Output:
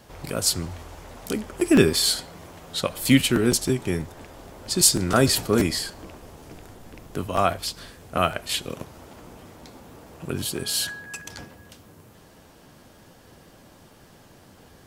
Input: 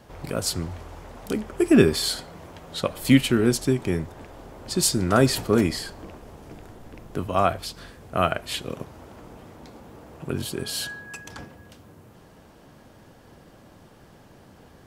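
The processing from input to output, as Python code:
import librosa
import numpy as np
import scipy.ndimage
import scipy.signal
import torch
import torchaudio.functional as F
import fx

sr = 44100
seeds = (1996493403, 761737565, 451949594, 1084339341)

y = fx.high_shelf(x, sr, hz=2800.0, db=7.5)
y = fx.buffer_crackle(y, sr, first_s=0.63, period_s=0.16, block=512, kind='repeat')
y = F.gain(torch.from_numpy(y), -1.0).numpy()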